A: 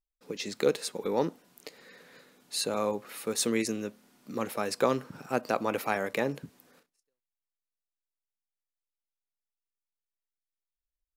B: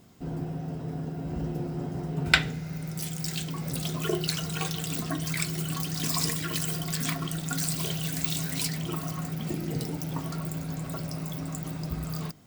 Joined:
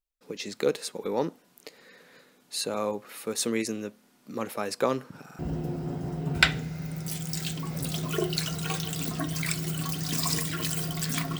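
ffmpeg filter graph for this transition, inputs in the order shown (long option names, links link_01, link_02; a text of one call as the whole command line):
ffmpeg -i cue0.wav -i cue1.wav -filter_complex "[0:a]apad=whole_dur=11.39,atrim=end=11.39,asplit=3[link_01][link_02][link_03];[link_01]atrim=end=5.292[link_04];[link_02]atrim=start=5.238:end=5.292[link_05];[link_03]atrim=start=5.238:end=5.292[link_06];[1:a]atrim=start=1.298:end=7.3[link_07];[link_04][link_05]acrossfade=duration=0.004:curve1=hsin:curve2=hsin[link_08];[link_08][link_06]acrossfade=duration=0.004:curve1=hsin:curve2=hsin[link_09];[link_09][link_07]acrossfade=duration=0.004:curve1=hsin:curve2=hsin" out.wav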